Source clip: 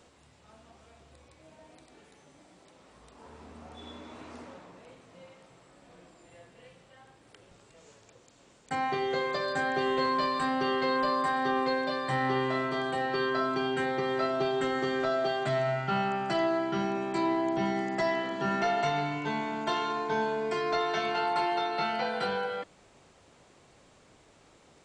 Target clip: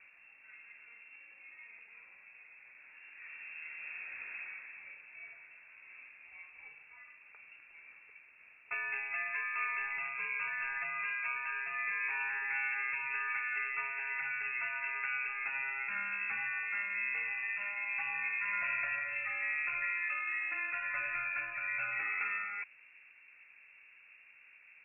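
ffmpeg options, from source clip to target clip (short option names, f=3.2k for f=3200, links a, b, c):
-af "asetnsamples=n=441:p=0,asendcmd='8.74 equalizer g -15',equalizer=f=2.2k:w=1.2:g=-8.5,afftfilt=real='re*lt(hypot(re,im),0.112)':imag='im*lt(hypot(re,im),0.112)':win_size=1024:overlap=0.75,lowpass=f=2.4k:t=q:w=0.5098,lowpass=f=2.4k:t=q:w=0.6013,lowpass=f=2.4k:t=q:w=0.9,lowpass=f=2.4k:t=q:w=2.563,afreqshift=-2800,volume=2dB"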